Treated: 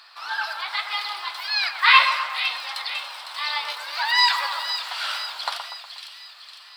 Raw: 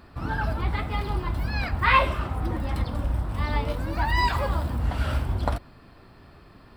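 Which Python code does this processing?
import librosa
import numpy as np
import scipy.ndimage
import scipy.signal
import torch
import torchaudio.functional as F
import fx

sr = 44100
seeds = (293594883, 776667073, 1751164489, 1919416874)

p1 = scipy.signal.sosfilt(scipy.signal.butter(4, 890.0, 'highpass', fs=sr, output='sos'), x)
p2 = fx.peak_eq(p1, sr, hz=4300.0, db=14.5, octaves=1.3)
p3 = p2 + fx.echo_split(p2, sr, split_hz=2300.0, low_ms=121, high_ms=505, feedback_pct=52, wet_db=-8.0, dry=0)
y = F.gain(torch.from_numpy(p3), 2.5).numpy()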